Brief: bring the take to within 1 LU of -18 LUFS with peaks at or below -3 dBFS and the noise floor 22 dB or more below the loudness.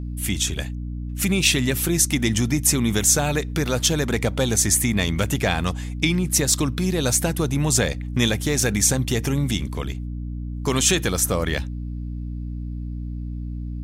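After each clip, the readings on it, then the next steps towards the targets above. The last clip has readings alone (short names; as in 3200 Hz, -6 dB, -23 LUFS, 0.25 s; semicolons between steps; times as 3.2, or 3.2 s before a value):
hum 60 Hz; harmonics up to 300 Hz; hum level -27 dBFS; loudness -21.0 LUFS; peak -4.5 dBFS; loudness target -18.0 LUFS
-> de-hum 60 Hz, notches 5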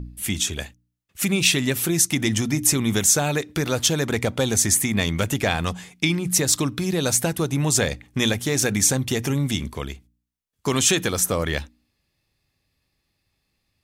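hum none; loudness -21.0 LUFS; peak -5.0 dBFS; loudness target -18.0 LUFS
-> gain +3 dB; limiter -3 dBFS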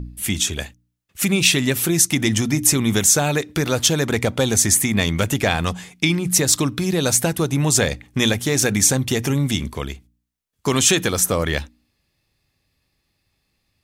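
loudness -18.5 LUFS; peak -3.0 dBFS; noise floor -72 dBFS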